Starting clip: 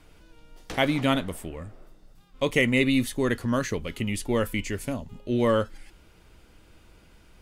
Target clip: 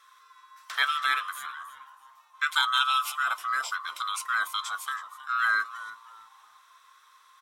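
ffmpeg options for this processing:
ffmpeg -i in.wav -filter_complex "[0:a]afftfilt=real='real(if(lt(b,960),b+48*(1-2*mod(floor(b/48),2)),b),0)':imag='imag(if(lt(b,960),b+48*(1-2*mod(floor(b/48),2)),b),0)':win_size=2048:overlap=0.75,highpass=1400,asplit=4[link_01][link_02][link_03][link_04];[link_02]adelay=321,afreqshift=-120,volume=-16dB[link_05];[link_03]adelay=642,afreqshift=-240,volume=-26.5dB[link_06];[link_04]adelay=963,afreqshift=-360,volume=-36.9dB[link_07];[link_01][link_05][link_06][link_07]amix=inputs=4:normalize=0" out.wav

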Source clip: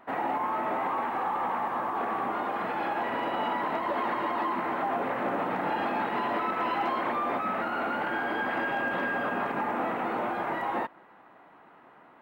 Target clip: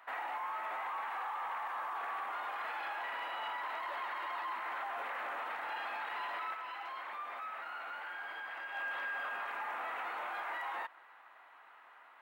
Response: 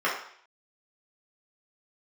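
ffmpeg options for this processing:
-filter_complex "[0:a]highpass=1200,alimiter=level_in=10dB:limit=-24dB:level=0:latency=1:release=56,volume=-10dB,asettb=1/sr,asplit=3[link_01][link_02][link_03];[link_01]atrim=end=6.544[link_04];[link_02]atrim=start=6.54:end=8.75,asetpts=PTS-STARTPTS,afade=type=in:duration=0.004:curve=qsin,afade=type=out:start_time=2.206:duration=0.004:curve=qsin,flanger=delay=7.5:depth=2.8:regen=-69:speed=1.2:shape=sinusoidal[link_05];[link_03]atrim=start=8.746[link_06];[link_04][link_05]acrossfade=duration=0.004:curve1=hsin:curve2=qsin[link_07];[link_07][link_06]acrossfade=duration=0.004:curve1=qsin:curve2=hsin,volume=1.5dB"

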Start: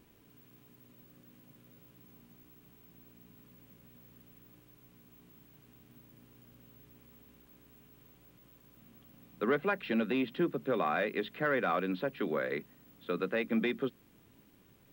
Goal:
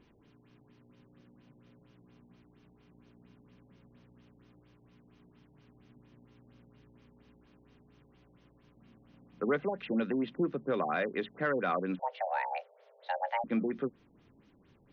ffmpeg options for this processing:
ffmpeg -i in.wav -filter_complex "[0:a]asettb=1/sr,asplit=3[link_01][link_02][link_03];[link_01]atrim=end=11.994[link_04];[link_02]atrim=start=11.99:end=13.44,asetpts=PTS-STARTPTS,afade=type=in:duration=0.004:curve=qsin,afade=type=out:start_time=1.446:duration=0.004:curve=qsin,afreqshift=360[link_05];[link_03]atrim=start=13.436[link_06];[link_04][link_05]acrossfade=duration=0.004:curve1=hsin:curve2=qsin[link_07];[link_07][link_06]acrossfade=duration=0.004:curve1=qsin:curve2=hsin,afftfilt=real='re*lt(b*sr/1024,900*pow(6700/900,0.5+0.5*sin(2*PI*4.3*pts/sr)))':imag='im*lt(b*sr/1024,900*pow(6700/900,0.5+0.5*sin(2*PI*4.3*pts/sr)))':win_size=1024:overlap=0.75" out.wav

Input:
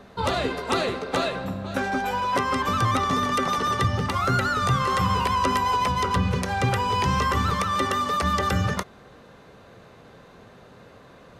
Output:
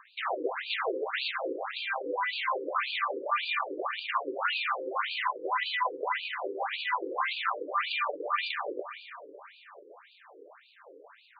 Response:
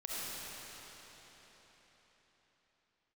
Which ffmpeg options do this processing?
-filter_complex "[0:a]acompressor=threshold=-28dB:ratio=2,aeval=exprs='0.188*(cos(1*acos(clip(val(0)/0.188,-1,1)))-cos(1*PI/2))+0.0188*(cos(2*acos(clip(val(0)/0.188,-1,1)))-cos(2*PI/2))+0.00668*(cos(5*acos(clip(val(0)/0.188,-1,1)))-cos(5*PI/2))+0.00376*(cos(7*acos(clip(val(0)/0.188,-1,1)))-cos(7*PI/2))+0.0473*(cos(8*acos(clip(val(0)/0.188,-1,1)))-cos(8*PI/2))':channel_layout=same,asplit=2[link_01][link_02];[1:a]atrim=start_sample=2205,asetrate=52920,aresample=44100[link_03];[link_02][link_03]afir=irnorm=-1:irlink=0,volume=-9dB[link_04];[link_01][link_04]amix=inputs=2:normalize=0,afftfilt=real='re*between(b*sr/1024,370*pow(3400/370,0.5+0.5*sin(2*PI*1.8*pts/sr))/1.41,370*pow(3400/370,0.5+0.5*sin(2*PI*1.8*pts/sr))*1.41)':imag='im*between(b*sr/1024,370*pow(3400/370,0.5+0.5*sin(2*PI*1.8*pts/sr))/1.41,370*pow(3400/370,0.5+0.5*sin(2*PI*1.8*pts/sr))*1.41)':win_size=1024:overlap=0.75"

